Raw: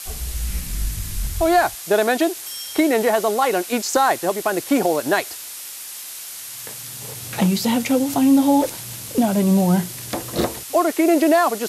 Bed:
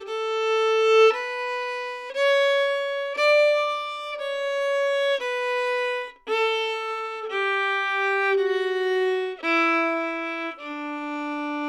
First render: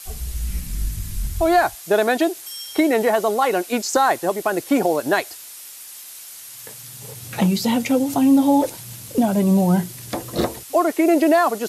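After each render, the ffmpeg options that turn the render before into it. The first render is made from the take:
ffmpeg -i in.wav -af "afftdn=noise_reduction=6:noise_floor=-34" out.wav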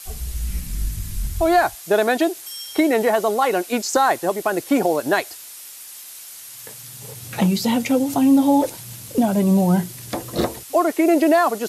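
ffmpeg -i in.wav -af anull out.wav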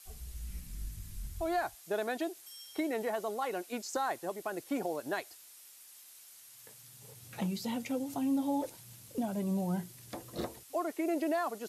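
ffmpeg -i in.wav -af "volume=-16.5dB" out.wav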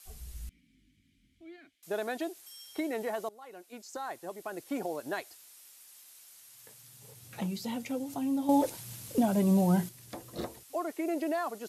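ffmpeg -i in.wav -filter_complex "[0:a]asettb=1/sr,asplit=3[link_01][link_02][link_03];[link_01]atrim=end=0.494[link_04];[link_02]atrim=start=0.49:end=1.83,asetpts=PTS-STARTPTS,afade=type=in:duration=0.004:curve=qsin,afade=type=out:start_time=1.336:duration=0.004:curve=qsin,asplit=3[link_05][link_06][link_07];[link_05]bandpass=frequency=270:width_type=q:width=8,volume=0dB[link_08];[link_06]bandpass=frequency=2290:width_type=q:width=8,volume=-6dB[link_09];[link_07]bandpass=frequency=3010:width_type=q:width=8,volume=-9dB[link_10];[link_08][link_09][link_10]amix=inputs=3:normalize=0[link_11];[link_03]atrim=start=1.826[link_12];[link_04][link_11]acrossfade=duration=0.004:curve1=hsin:curve2=qsin[link_13];[link_13][link_12]acrossfade=duration=0.004:curve1=qsin:curve2=hsin,asplit=4[link_14][link_15][link_16][link_17];[link_14]atrim=end=3.29,asetpts=PTS-STARTPTS,afade=type=out:start_time=3.286:duration=0.004:curve=hsin:silence=0.1[link_18];[link_15]atrim=start=3.29:end=8.492,asetpts=PTS-STARTPTS,afade=type=in:duration=1.53:silence=0.1[link_19];[link_16]atrim=start=8.488:end=9.892,asetpts=PTS-STARTPTS,volume=8dB[link_20];[link_17]atrim=start=9.888[link_21];[link_18][link_19]concat=n=2:v=0:a=1[link_22];[link_22][link_20]acrossfade=duration=0.004:curve1=hsin:curve2=hsin[link_23];[link_23][link_21]acrossfade=duration=0.004:curve1=hsin:curve2=hsin" out.wav

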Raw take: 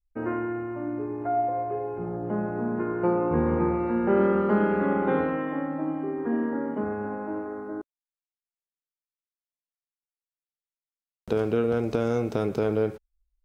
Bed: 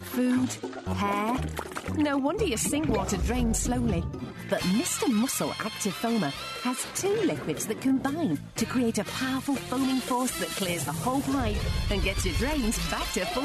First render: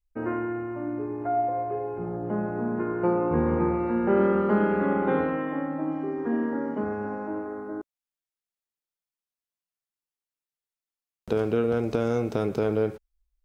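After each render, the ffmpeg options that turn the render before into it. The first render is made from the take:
ffmpeg -i in.wav -filter_complex "[0:a]asettb=1/sr,asplit=3[link_01][link_02][link_03];[link_01]atrim=end=5.914[link_04];[link_02]atrim=start=5.91:end=7.28,asetpts=PTS-STARTPTS,afade=type=in:duration=0.004:curve=qsin,afade=type=out:start_time=1.366:duration=0.004:curve=qsin,lowpass=frequency=5600:width_type=q:width=3.2[link_05];[link_03]atrim=start=7.276[link_06];[link_04][link_05]acrossfade=duration=0.004:curve1=hsin:curve2=qsin[link_07];[link_07][link_06]acrossfade=duration=0.004:curve1=qsin:curve2=hsin" out.wav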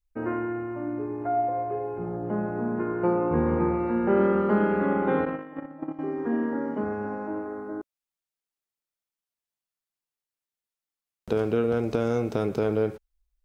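ffmpeg -i in.wav -filter_complex "[0:a]asettb=1/sr,asplit=3[link_01][link_02][link_03];[link_01]atrim=end=5.254[link_04];[link_02]atrim=start=5.25:end=5.99,asetpts=PTS-STARTPTS,afade=type=in:duration=0.004:curve=qsin,afade=type=out:start_time=0.736:duration=0.004:curve=qsin,agate=range=-13dB:threshold=-28dB:ratio=16:release=100:detection=peak[link_05];[link_03]atrim=start=5.986[link_06];[link_04][link_05]acrossfade=duration=0.004:curve1=hsin:curve2=qsin[link_07];[link_07][link_06]acrossfade=duration=0.004:curve1=qsin:curve2=hsin" out.wav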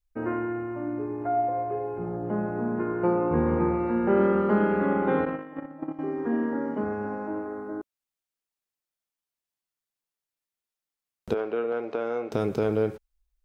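ffmpeg -i in.wav -filter_complex "[0:a]asettb=1/sr,asplit=3[link_01][link_02][link_03];[link_01]atrim=end=11.344[link_04];[link_02]atrim=start=11.34:end=12.32,asetpts=PTS-STARTPTS,afade=type=in:duration=0.004:curve=qsin,afade=type=out:start_time=0.976:duration=0.004:curve=qsin,highpass=450,lowpass=2400[link_05];[link_03]atrim=start=12.316[link_06];[link_04][link_05]acrossfade=duration=0.004:curve1=hsin:curve2=qsin[link_07];[link_07][link_06]acrossfade=duration=0.004:curve1=qsin:curve2=hsin" out.wav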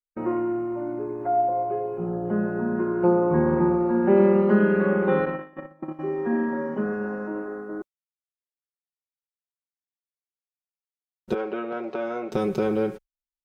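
ffmpeg -i in.wav -af "agate=range=-33dB:threshold=-34dB:ratio=3:detection=peak,aecho=1:1:5.4:0.87" out.wav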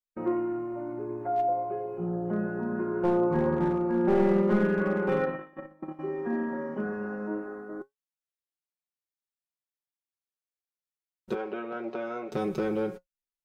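ffmpeg -i in.wav -af "aeval=exprs='clip(val(0),-1,0.15)':channel_layout=same,flanger=delay=5.5:depth=5.7:regen=68:speed=0.23:shape=sinusoidal" out.wav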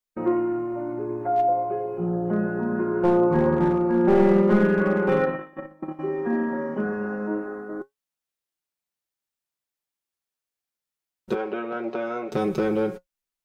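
ffmpeg -i in.wav -af "volume=5.5dB" out.wav

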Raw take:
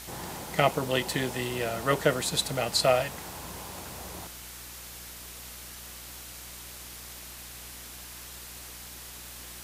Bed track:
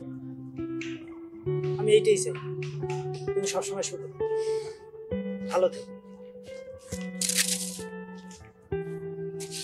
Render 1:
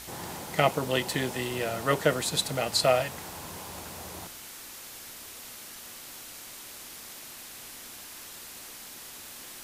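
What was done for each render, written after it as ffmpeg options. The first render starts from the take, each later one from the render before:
ffmpeg -i in.wav -af "bandreject=frequency=60:width_type=h:width=4,bandreject=frequency=120:width_type=h:width=4,bandreject=frequency=180:width_type=h:width=4" out.wav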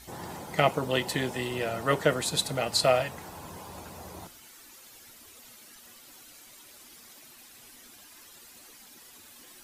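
ffmpeg -i in.wav -af "afftdn=noise_reduction=11:noise_floor=-45" out.wav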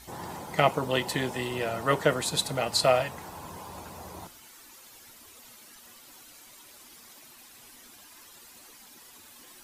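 ffmpeg -i in.wav -af "equalizer=frequency=980:width_type=o:width=0.57:gain=3.5" out.wav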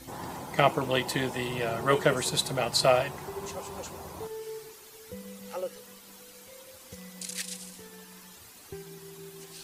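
ffmpeg -i in.wav -i bed.wav -filter_complex "[1:a]volume=-11dB[link_01];[0:a][link_01]amix=inputs=2:normalize=0" out.wav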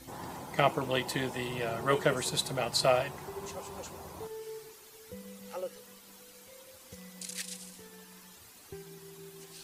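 ffmpeg -i in.wav -af "volume=-3.5dB" out.wav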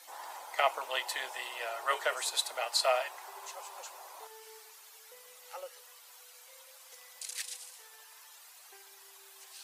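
ffmpeg -i in.wav -af "highpass=frequency=650:width=0.5412,highpass=frequency=650:width=1.3066" out.wav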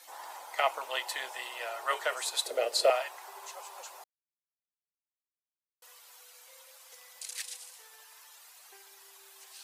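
ffmpeg -i in.wav -filter_complex "[0:a]asettb=1/sr,asplit=3[link_01][link_02][link_03];[link_01]atrim=end=2.464[link_04];[link_02]atrim=start=2.46:end=2.9,asetpts=PTS-STARTPTS,afade=type=in:duration=0.004:curve=qsin,afade=type=out:start_time=0.436:duration=0.004:curve=qsin,lowshelf=frequency=660:width_type=q:width=3:gain=10.5[link_05];[link_03]atrim=start=2.896[link_06];[link_04][link_05]acrossfade=duration=0.004:curve1=hsin:curve2=qsin[link_07];[link_07][link_06]acrossfade=duration=0.004:curve1=qsin:curve2=hsin,asplit=3[link_08][link_09][link_10];[link_08]atrim=end=4.04,asetpts=PTS-STARTPTS,afade=type=out:start_time=4.036:duration=0.004:curve=hsin[link_11];[link_09]atrim=start=4.04:end=5.82,asetpts=PTS-STARTPTS,volume=0[link_12];[link_10]atrim=start=5.82,asetpts=PTS-STARTPTS,afade=type=in:duration=0.004:curve=hsin[link_13];[link_11][link_12][link_13]concat=n=3:v=0:a=1" out.wav

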